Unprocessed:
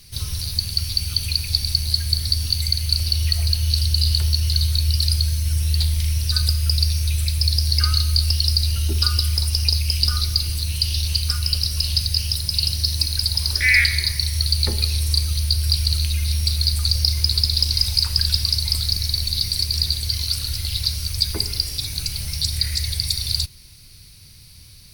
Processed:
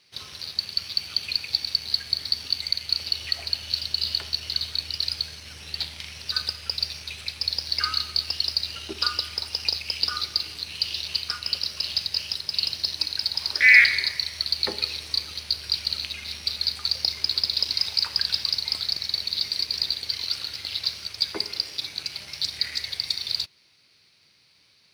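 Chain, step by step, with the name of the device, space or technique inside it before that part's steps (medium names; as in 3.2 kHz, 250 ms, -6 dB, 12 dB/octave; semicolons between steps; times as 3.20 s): phone line with mismatched companding (band-pass 390–3400 Hz; companding laws mixed up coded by A); trim +3.5 dB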